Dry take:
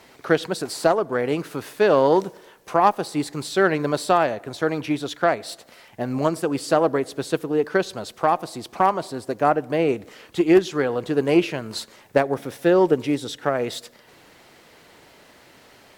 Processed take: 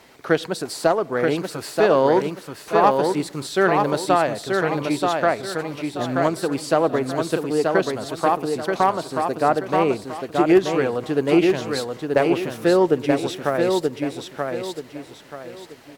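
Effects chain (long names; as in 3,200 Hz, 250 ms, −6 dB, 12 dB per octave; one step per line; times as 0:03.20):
repeating echo 931 ms, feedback 32%, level −4 dB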